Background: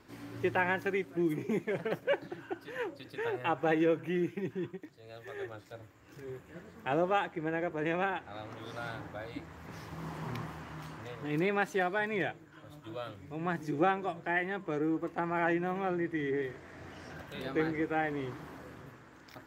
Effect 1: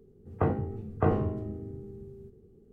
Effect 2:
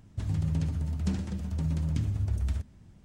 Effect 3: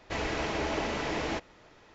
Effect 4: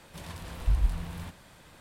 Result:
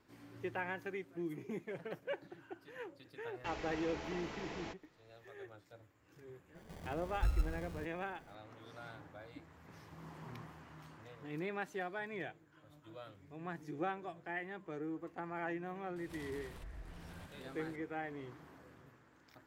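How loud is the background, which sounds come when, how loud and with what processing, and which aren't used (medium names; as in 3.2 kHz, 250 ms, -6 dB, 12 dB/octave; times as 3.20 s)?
background -10.5 dB
3.34 s: add 3 -13.5 dB + band-stop 600 Hz
6.55 s: add 4 -8 dB + sample-and-hold 33×
15.96 s: add 4 -7.5 dB + compression, threshold -40 dBFS
not used: 1, 2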